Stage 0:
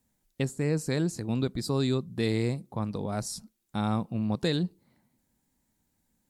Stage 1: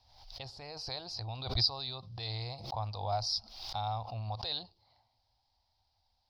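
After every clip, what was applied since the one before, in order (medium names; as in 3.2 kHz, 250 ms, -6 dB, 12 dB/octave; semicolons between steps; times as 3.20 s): peak limiter -25.5 dBFS, peak gain reduction 11 dB; FFT filter 110 Hz 0 dB, 160 Hz -24 dB, 270 Hz -22 dB, 430 Hz -15 dB, 750 Hz +9 dB, 1.7 kHz -10 dB, 5 kHz +13 dB, 7.4 kHz -28 dB, 12 kHz -24 dB; swell ahead of each attack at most 69 dB/s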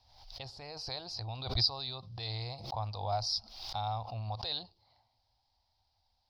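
no audible change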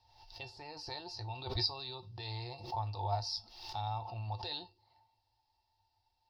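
feedback comb 100 Hz, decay 0.2 s, harmonics odd, mix 70%; small resonant body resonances 370/880/1800/2700 Hz, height 16 dB, ringing for 90 ms; trim +2 dB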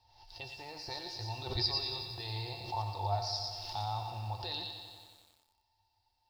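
on a send: feedback echo behind a high-pass 114 ms, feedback 36%, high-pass 2.1 kHz, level -3.5 dB; on the sum: bit-crushed delay 91 ms, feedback 80%, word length 10-bit, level -10 dB; trim +1 dB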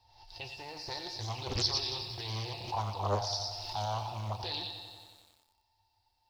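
loudspeaker Doppler distortion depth 0.78 ms; trim +2 dB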